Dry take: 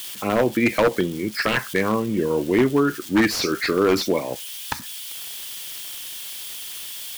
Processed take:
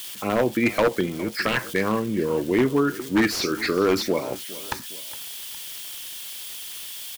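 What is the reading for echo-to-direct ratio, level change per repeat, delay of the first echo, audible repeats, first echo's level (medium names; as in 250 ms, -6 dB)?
-17.0 dB, -6.0 dB, 412 ms, 2, -18.0 dB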